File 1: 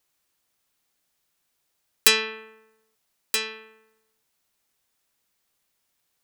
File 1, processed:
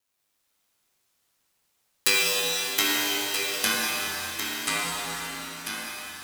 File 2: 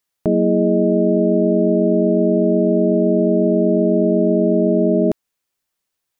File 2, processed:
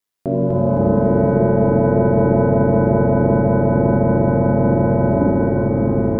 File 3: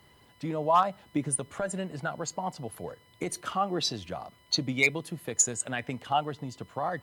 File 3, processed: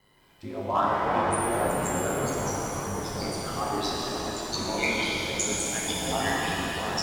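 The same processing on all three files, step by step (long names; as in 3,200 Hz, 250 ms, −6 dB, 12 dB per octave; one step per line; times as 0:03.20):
delay with pitch and tempo change per echo 181 ms, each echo −4 semitones, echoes 3
ring modulation 51 Hz
reverb with rising layers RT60 3.7 s, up +7 semitones, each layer −8 dB, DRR −5 dB
level −3.5 dB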